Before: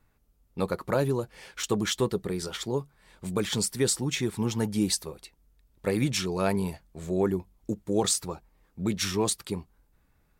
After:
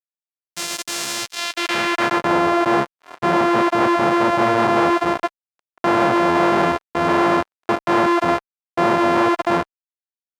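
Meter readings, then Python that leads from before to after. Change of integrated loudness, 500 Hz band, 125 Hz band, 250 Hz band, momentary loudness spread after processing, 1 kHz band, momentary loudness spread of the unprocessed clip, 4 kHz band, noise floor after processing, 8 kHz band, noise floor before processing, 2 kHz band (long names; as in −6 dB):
+10.5 dB, +10.5 dB, 0.0 dB, +9.5 dB, 8 LU, +21.0 dB, 11 LU, +6.0 dB, below −85 dBFS, −1.0 dB, −67 dBFS, +17.0 dB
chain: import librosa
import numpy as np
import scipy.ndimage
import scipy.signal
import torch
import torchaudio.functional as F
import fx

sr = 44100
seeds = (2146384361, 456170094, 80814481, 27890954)

y = np.r_[np.sort(x[:len(x) // 128 * 128].reshape(-1, 128), axis=1).ravel(), x[len(x) // 128 * 128:]]
y = fx.fuzz(y, sr, gain_db=44.0, gate_db=-52.0)
y = fx.filter_sweep_bandpass(y, sr, from_hz=6700.0, to_hz=1000.0, start_s=1.11, end_s=2.33, q=0.96)
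y = F.gain(torch.from_numpy(y), 5.0).numpy()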